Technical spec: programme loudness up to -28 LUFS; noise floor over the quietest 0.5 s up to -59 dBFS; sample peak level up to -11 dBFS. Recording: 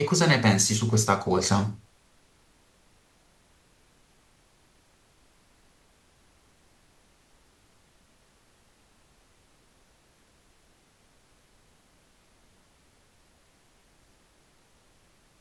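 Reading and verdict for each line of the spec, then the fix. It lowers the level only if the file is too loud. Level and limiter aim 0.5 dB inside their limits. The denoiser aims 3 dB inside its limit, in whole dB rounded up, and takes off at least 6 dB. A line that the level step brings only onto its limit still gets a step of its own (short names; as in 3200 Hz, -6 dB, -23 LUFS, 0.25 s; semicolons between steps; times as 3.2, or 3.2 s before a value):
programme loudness -23.0 LUFS: fail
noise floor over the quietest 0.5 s -62 dBFS: OK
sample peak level -5.5 dBFS: fail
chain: gain -5.5 dB; limiter -11.5 dBFS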